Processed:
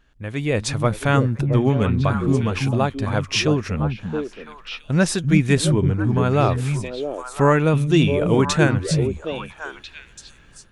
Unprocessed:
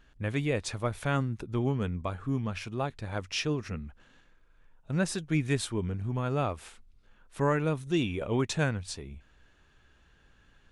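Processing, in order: AGC gain up to 11 dB; delay with a stepping band-pass 0.336 s, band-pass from 160 Hz, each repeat 1.4 oct, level -0.5 dB

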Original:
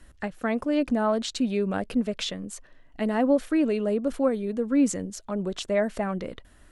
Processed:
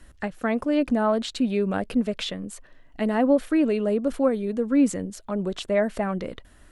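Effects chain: dynamic EQ 6200 Hz, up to -7 dB, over -50 dBFS, Q 1.5; gain +2 dB

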